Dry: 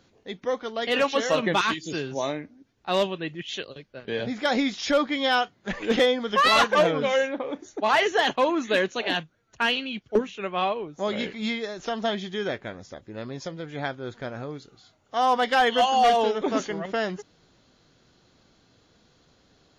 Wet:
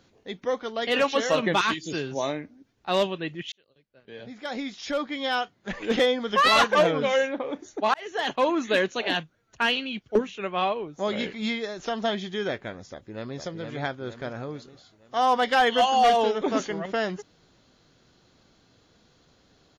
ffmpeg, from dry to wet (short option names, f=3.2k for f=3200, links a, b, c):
-filter_complex "[0:a]asplit=2[a][b];[b]afade=t=in:st=12.91:d=0.01,afade=t=out:st=13.4:d=0.01,aecho=0:1:460|920|1380|1840|2300|2760:0.595662|0.297831|0.148916|0.0744578|0.0372289|0.0186144[c];[a][c]amix=inputs=2:normalize=0,asplit=3[d][e][f];[d]atrim=end=3.52,asetpts=PTS-STARTPTS,afade=t=out:st=3.516:d=0.004:c=hsin[g];[e]atrim=start=3.52:end=7.94,asetpts=PTS-STARTPTS,afade=t=in:d=2.89,afade=t=out:st=4.416:d=0.004:c=hsin[h];[f]atrim=start=7.94,asetpts=PTS-STARTPTS,afade=t=in:d=0.53[i];[g][h][i]concat=n=3:v=0:a=1"